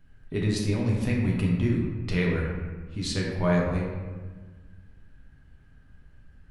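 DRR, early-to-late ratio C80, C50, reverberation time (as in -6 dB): -3.0 dB, 3.5 dB, 1.5 dB, 1.4 s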